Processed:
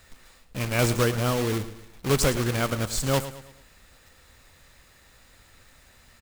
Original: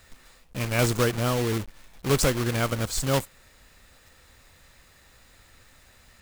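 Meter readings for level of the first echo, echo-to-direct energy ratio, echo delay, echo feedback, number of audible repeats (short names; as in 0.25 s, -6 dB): -13.5 dB, -12.5 dB, 0.109 s, 43%, 3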